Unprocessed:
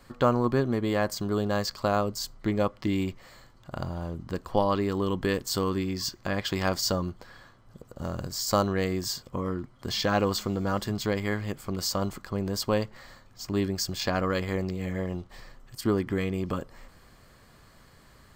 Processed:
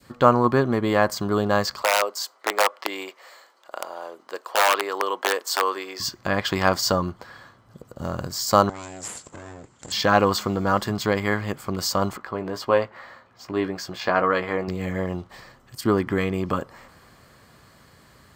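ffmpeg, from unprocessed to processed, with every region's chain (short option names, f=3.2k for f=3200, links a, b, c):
-filter_complex "[0:a]asettb=1/sr,asplit=3[a][b][c];[a]atrim=end=1.824[d];[b]atrim=start=1.82:end=6,asetpts=PTS-STARTPTS,afade=t=in:d=0.004:c=qsin,afade=t=out:st=4.176:d=0.004:c=qsin,aeval=exprs='(mod(7.5*val(0)+1,2)-1)/7.5':c=same,highpass=f=440:w=0.5412,highpass=f=440:w=1.3066[e];[c]atrim=start=5.996[f];[d][e]acrossfade=d=0.004:c1=hsin:c2=qsin[g];[g][f]acrossfade=d=0.004:c1=qsin:c2=hsin,asettb=1/sr,asplit=3[h][i][j];[h]atrim=end=8.694[k];[i]atrim=start=8.69:end=9.92,asetpts=PTS-STARTPTS,afade=t=in:d=0.004:c=qsin,afade=t=out:st=1.226:d=0.004:c=qsin,acompressor=threshold=-35dB:ratio=10:attack=3.2:release=140:knee=1:detection=peak,aeval=exprs='abs(val(0))':c=same,lowpass=f=7.4k:t=q:w=12[l];[j]atrim=start=9.916[m];[k][l]acrossfade=d=0.004:c1=hsin:c2=qsin[n];[n][m]acrossfade=d=0.004:c1=qsin:c2=hsin,asettb=1/sr,asplit=3[o][p][q];[o]atrim=end=12.174[r];[p]atrim=start=12.17:end=14.68,asetpts=PTS-STARTPTS,afade=t=in:d=0.004:c=qsin,afade=t=out:st=2.506:d=0.004:c=qsin,bass=f=250:g=-9,treble=f=4k:g=-13,asplit=2[s][t];[t]adelay=17,volume=-8.5dB[u];[s][u]amix=inputs=2:normalize=0,atrim=end_sample=110691[v];[q]atrim=start=14.676[w];[r][v]acrossfade=d=0.004:c1=hsin:c2=qsin[x];[x][w]acrossfade=d=0.004:c1=qsin:c2=hsin,highpass=72,adynamicequalizer=threshold=0.01:dfrequency=1100:dqfactor=0.72:tfrequency=1100:tqfactor=0.72:attack=5:release=100:ratio=0.375:range=3.5:mode=boostabove:tftype=bell,volume=3.5dB"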